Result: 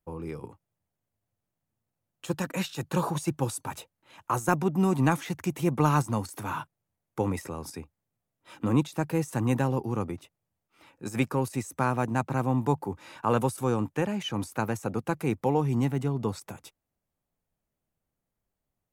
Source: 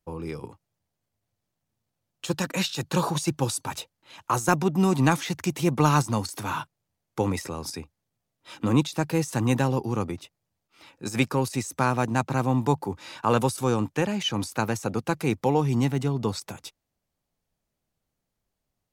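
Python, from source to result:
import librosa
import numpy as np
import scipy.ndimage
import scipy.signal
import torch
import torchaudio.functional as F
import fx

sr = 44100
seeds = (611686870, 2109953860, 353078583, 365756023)

y = fx.peak_eq(x, sr, hz=4600.0, db=-8.5, octaves=1.4)
y = y * librosa.db_to_amplitude(-2.5)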